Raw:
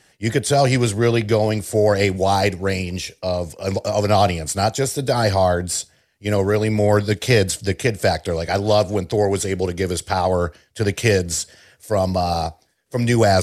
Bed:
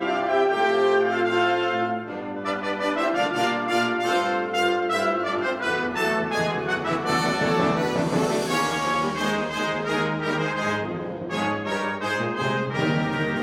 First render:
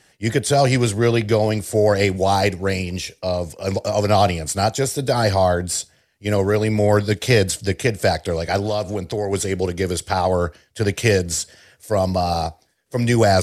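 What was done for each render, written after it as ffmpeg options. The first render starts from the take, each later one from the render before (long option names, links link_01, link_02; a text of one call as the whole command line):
ffmpeg -i in.wav -filter_complex "[0:a]asettb=1/sr,asplit=3[link_01][link_02][link_03];[link_01]atrim=end=8.664[link_04];[link_02]atrim=start=8.66:end=9.33,asetpts=PTS-STARTPTS,afade=type=in:duration=0.004:curve=qsin,afade=type=out:start_time=0.666:duration=0.004:curve=qsin,acompressor=threshold=-22dB:ratio=2:attack=3.2:release=140:knee=1:detection=peak[link_05];[link_03]atrim=start=9.326[link_06];[link_04][link_05]acrossfade=duration=0.004:curve1=hsin:curve2=qsin[link_07];[link_07][link_06]acrossfade=duration=0.004:curve1=qsin:curve2=hsin" out.wav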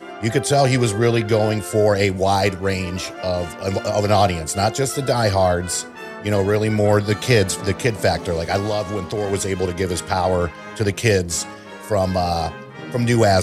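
ffmpeg -i in.wav -i bed.wav -filter_complex "[1:a]volume=-10.5dB[link_01];[0:a][link_01]amix=inputs=2:normalize=0" out.wav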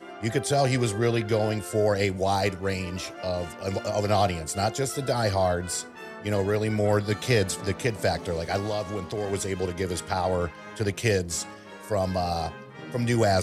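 ffmpeg -i in.wav -af "volume=-7dB" out.wav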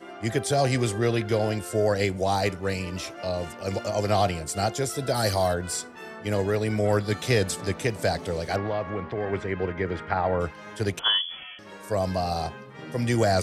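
ffmpeg -i in.wav -filter_complex "[0:a]asettb=1/sr,asplit=3[link_01][link_02][link_03];[link_01]atrim=end=5.144[link_04];[link_02]atrim=start=5.14:end=5.54,asetpts=PTS-STARTPTS,afade=type=in:duration=0.004:curve=qsin,afade=type=out:start_time=0.396:duration=0.004:curve=qsin,aemphasis=mode=production:type=50fm[link_05];[link_03]atrim=start=5.536[link_06];[link_04][link_05]acrossfade=duration=0.004:curve1=hsin:curve2=qsin[link_07];[link_07][link_06]acrossfade=duration=0.004:curve1=qsin:curve2=hsin,asplit=3[link_08][link_09][link_10];[link_08]afade=type=out:start_time=8.55:duration=0.02[link_11];[link_09]lowpass=frequency=1900:width_type=q:width=1.7,afade=type=in:start_time=8.55:duration=0.02,afade=type=out:start_time=10.39:duration=0.02[link_12];[link_10]afade=type=in:start_time=10.39:duration=0.02[link_13];[link_11][link_12][link_13]amix=inputs=3:normalize=0,asettb=1/sr,asplit=3[link_14][link_15][link_16];[link_14]atrim=end=10.994[link_17];[link_15]atrim=start=10.99:end=11.59,asetpts=PTS-STARTPTS,afade=type=in:duration=0.004:curve=qsin,afade=type=out:start_time=0.596:duration=0.004:curve=qsin,lowpass=frequency=3000:width_type=q:width=0.5098,lowpass=frequency=3000:width_type=q:width=0.6013,lowpass=frequency=3000:width_type=q:width=0.9,lowpass=frequency=3000:width_type=q:width=2.563,afreqshift=-3500[link_18];[link_16]atrim=start=11.586[link_19];[link_17][link_18]acrossfade=duration=0.004:curve1=hsin:curve2=qsin[link_20];[link_20][link_19]acrossfade=duration=0.004:curve1=qsin:curve2=hsin" out.wav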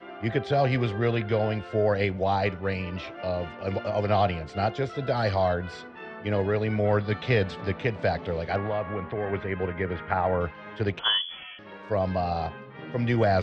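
ffmpeg -i in.wav -af "adynamicequalizer=threshold=0.00794:dfrequency=330:dqfactor=3.1:tfrequency=330:tqfactor=3.1:attack=5:release=100:ratio=0.375:range=2.5:mode=cutabove:tftype=bell,lowpass=frequency=3500:width=0.5412,lowpass=frequency=3500:width=1.3066" out.wav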